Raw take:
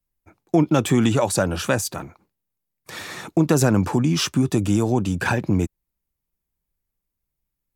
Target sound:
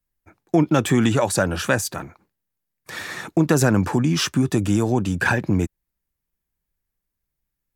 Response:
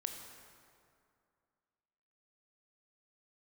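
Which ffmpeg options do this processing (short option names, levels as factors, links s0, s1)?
-af "equalizer=f=1700:t=o:w=0.5:g=5.5"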